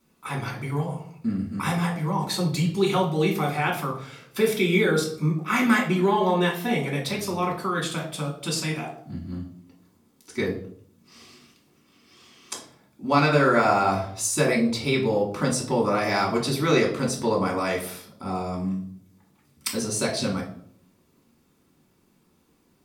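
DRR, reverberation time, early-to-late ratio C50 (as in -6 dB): -3.0 dB, 0.60 s, 8.5 dB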